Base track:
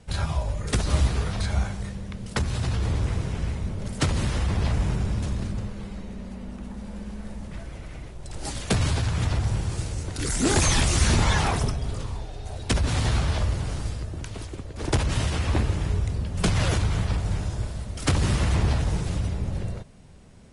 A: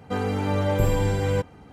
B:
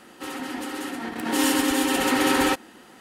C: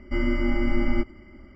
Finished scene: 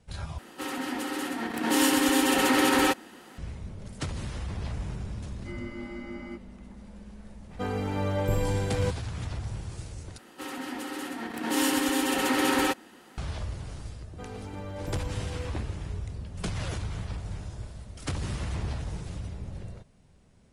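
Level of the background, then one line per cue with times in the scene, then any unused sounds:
base track -10 dB
0.38 s: replace with B -11.5 dB + loudness maximiser +11 dB
5.34 s: add C -12 dB + high-pass 200 Hz
7.49 s: add A -5 dB
10.18 s: replace with B -4 dB
14.08 s: add A -15 dB

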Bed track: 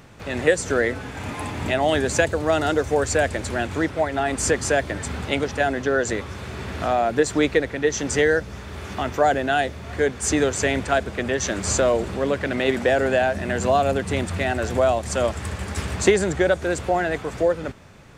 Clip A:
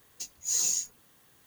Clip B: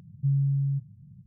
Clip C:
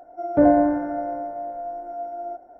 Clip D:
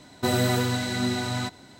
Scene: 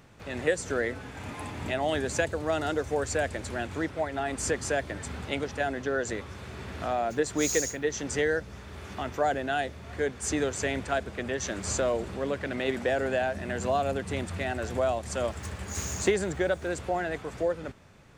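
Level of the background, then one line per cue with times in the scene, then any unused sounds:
bed track -8 dB
6.90 s: add A -6 dB + three bands expanded up and down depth 100%
15.23 s: add A -10.5 dB
not used: B, C, D

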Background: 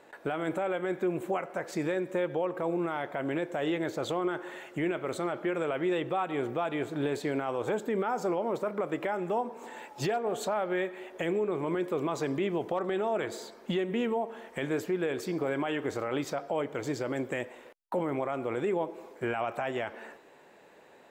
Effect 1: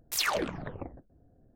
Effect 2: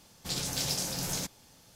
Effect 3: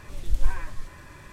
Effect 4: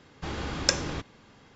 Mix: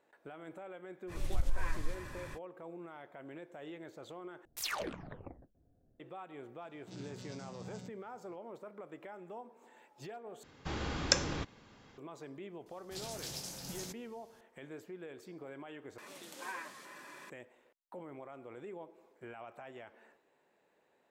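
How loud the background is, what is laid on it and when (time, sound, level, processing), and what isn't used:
background -17 dB
1.07 s: add 3 -1 dB, fades 0.05 s + compression 12:1, threshold -22 dBFS
4.45 s: replace with 1 -9 dB
6.61 s: add 2 -13.5 dB + vocoder on a held chord bare fifth, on B2
10.43 s: replace with 4 -4 dB
12.66 s: add 2 -11.5 dB
15.98 s: replace with 3 -2 dB + Bessel high-pass 330 Hz, order 8

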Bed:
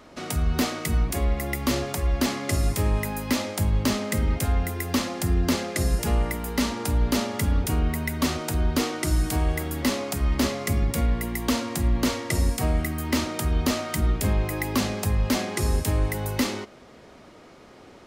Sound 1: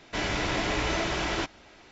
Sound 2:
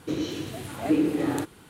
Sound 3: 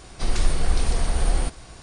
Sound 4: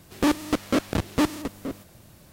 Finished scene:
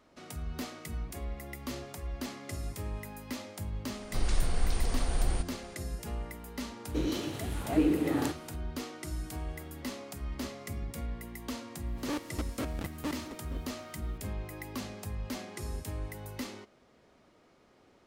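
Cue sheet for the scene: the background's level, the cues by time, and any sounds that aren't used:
bed -14.5 dB
3.93 s: add 3 -8 dB
6.87 s: add 2 -3.5 dB
11.86 s: add 4 -14 dB
not used: 1

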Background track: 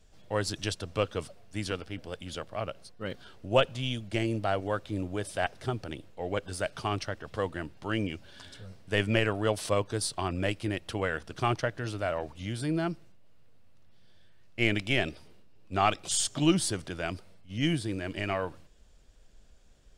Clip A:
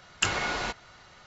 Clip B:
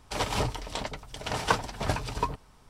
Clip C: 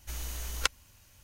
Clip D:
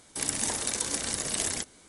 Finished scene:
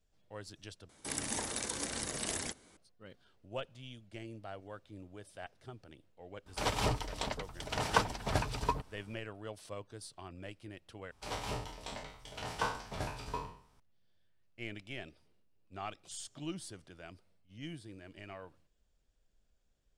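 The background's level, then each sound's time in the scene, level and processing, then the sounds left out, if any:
background track -17 dB
0.89 s: replace with D -4 dB + treble shelf 3.9 kHz -6 dB
6.46 s: add B -3.5 dB
11.11 s: replace with B -12.5 dB + spectral sustain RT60 0.53 s
not used: A, C

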